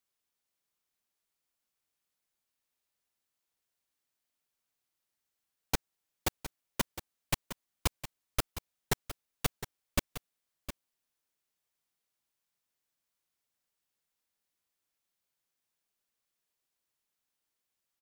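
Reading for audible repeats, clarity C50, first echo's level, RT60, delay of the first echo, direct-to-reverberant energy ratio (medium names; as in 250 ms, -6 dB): 1, no reverb, -12.0 dB, no reverb, 711 ms, no reverb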